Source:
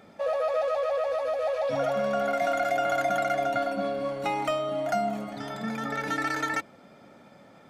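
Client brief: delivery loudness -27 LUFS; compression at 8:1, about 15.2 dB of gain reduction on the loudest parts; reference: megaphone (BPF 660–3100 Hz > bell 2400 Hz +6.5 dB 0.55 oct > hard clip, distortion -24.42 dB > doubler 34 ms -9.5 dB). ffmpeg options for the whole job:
-filter_complex "[0:a]acompressor=threshold=-39dB:ratio=8,highpass=660,lowpass=3.1k,equalizer=f=2.4k:t=o:w=0.55:g=6.5,asoftclip=type=hard:threshold=-35dB,asplit=2[a][b];[b]adelay=34,volume=-9.5dB[c];[a][c]amix=inputs=2:normalize=0,volume=16dB"

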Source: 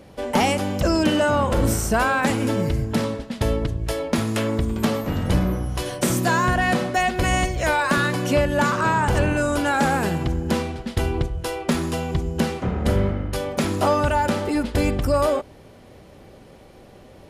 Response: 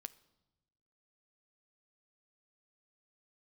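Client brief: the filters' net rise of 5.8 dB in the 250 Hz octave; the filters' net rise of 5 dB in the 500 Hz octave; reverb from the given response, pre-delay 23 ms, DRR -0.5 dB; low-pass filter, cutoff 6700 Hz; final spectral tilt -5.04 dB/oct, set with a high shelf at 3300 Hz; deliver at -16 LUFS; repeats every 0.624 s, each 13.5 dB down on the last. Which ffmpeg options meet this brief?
-filter_complex "[0:a]lowpass=6.7k,equalizer=f=250:t=o:g=6,equalizer=f=500:t=o:g=4.5,highshelf=f=3.3k:g=6,aecho=1:1:624|1248:0.211|0.0444,asplit=2[a][b];[1:a]atrim=start_sample=2205,adelay=23[c];[b][c]afir=irnorm=-1:irlink=0,volume=5.5dB[d];[a][d]amix=inputs=2:normalize=0,volume=-1dB"

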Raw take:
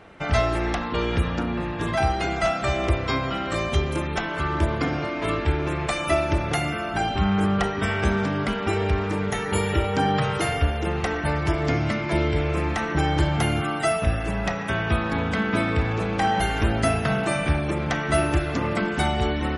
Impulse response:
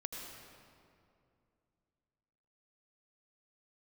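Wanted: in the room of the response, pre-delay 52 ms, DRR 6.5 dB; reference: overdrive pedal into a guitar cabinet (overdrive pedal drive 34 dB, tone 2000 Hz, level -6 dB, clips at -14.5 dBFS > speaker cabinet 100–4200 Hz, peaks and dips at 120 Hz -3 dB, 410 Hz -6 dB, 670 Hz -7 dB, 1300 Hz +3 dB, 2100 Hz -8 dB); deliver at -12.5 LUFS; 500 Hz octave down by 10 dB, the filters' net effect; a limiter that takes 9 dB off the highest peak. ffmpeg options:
-filter_complex "[0:a]equalizer=f=500:t=o:g=-7,alimiter=limit=-18dB:level=0:latency=1,asplit=2[a][b];[1:a]atrim=start_sample=2205,adelay=52[c];[b][c]afir=irnorm=-1:irlink=0,volume=-6dB[d];[a][d]amix=inputs=2:normalize=0,asplit=2[e][f];[f]highpass=f=720:p=1,volume=34dB,asoftclip=type=tanh:threshold=-14.5dB[g];[e][g]amix=inputs=2:normalize=0,lowpass=f=2k:p=1,volume=-6dB,highpass=100,equalizer=f=120:t=q:w=4:g=-3,equalizer=f=410:t=q:w=4:g=-6,equalizer=f=670:t=q:w=4:g=-7,equalizer=f=1.3k:t=q:w=4:g=3,equalizer=f=2.1k:t=q:w=4:g=-8,lowpass=f=4.2k:w=0.5412,lowpass=f=4.2k:w=1.3066,volume=10dB"

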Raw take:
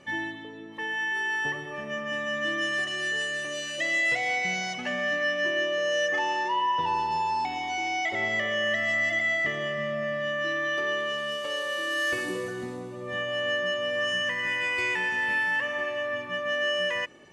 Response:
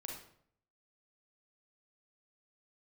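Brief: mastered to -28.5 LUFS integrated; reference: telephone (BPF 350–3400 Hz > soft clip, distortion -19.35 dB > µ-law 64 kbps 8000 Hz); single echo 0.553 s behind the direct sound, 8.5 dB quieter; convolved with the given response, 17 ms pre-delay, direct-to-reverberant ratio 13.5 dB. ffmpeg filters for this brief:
-filter_complex "[0:a]aecho=1:1:553:0.376,asplit=2[a][b];[1:a]atrim=start_sample=2205,adelay=17[c];[b][c]afir=irnorm=-1:irlink=0,volume=-11dB[d];[a][d]amix=inputs=2:normalize=0,highpass=350,lowpass=3.4k,asoftclip=threshold=-20.5dB,volume=-0.5dB" -ar 8000 -c:a pcm_mulaw

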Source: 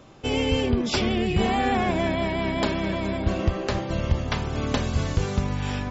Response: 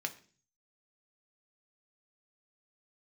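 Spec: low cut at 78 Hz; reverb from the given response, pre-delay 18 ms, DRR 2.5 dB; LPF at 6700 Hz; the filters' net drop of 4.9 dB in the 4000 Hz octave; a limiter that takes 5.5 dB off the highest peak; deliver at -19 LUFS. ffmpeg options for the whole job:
-filter_complex "[0:a]highpass=78,lowpass=6.7k,equalizer=f=4k:t=o:g=-6.5,alimiter=limit=-17dB:level=0:latency=1,asplit=2[a][b];[1:a]atrim=start_sample=2205,adelay=18[c];[b][c]afir=irnorm=-1:irlink=0,volume=-4.5dB[d];[a][d]amix=inputs=2:normalize=0,volume=7.5dB"

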